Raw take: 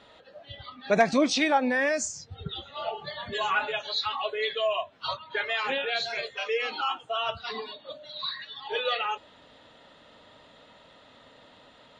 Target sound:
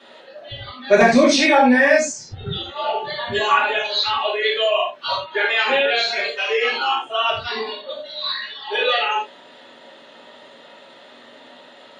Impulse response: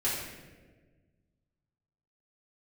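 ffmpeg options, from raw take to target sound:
-filter_complex "[0:a]asettb=1/sr,asplit=3[s0][s1][s2];[s0]atrim=end=1.944[s3];[s1]atrim=start=1.94:end=2.44,asetpts=PTS-STARTPTS,afade=t=in:d=0.004:c=qsin,afade=t=out:st=0.496:d=0.004:c=qsin,highshelf=f=6500:g=-9[s4];[s2]atrim=start=2.436[s5];[s3][s4]acrossfade=d=0.004:c1=hsin:c2=qsin[s6];[s6][s5]acrossfade=d=0.004:c1=qsin:c2=hsin,acrossover=split=180|1000|1800[s7][s8][s9][s10];[s7]aeval=exprs='sgn(val(0))*max(abs(val(0))-0.00178,0)':c=same[s11];[s11][s8][s9][s10]amix=inputs=4:normalize=0[s12];[1:a]atrim=start_sample=2205,afade=t=out:st=0.15:d=0.01,atrim=end_sample=7056[s13];[s12][s13]afir=irnorm=-1:irlink=0,volume=1.5"

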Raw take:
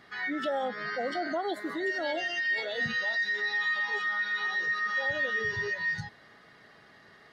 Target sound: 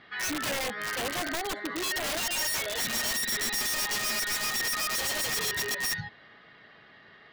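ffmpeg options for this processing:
-af "lowpass=f=3200:t=q:w=1.8,bandreject=f=405.1:t=h:w=4,bandreject=f=810.2:t=h:w=4,aeval=exprs='(mod(18.8*val(0)+1,2)-1)/18.8':c=same"

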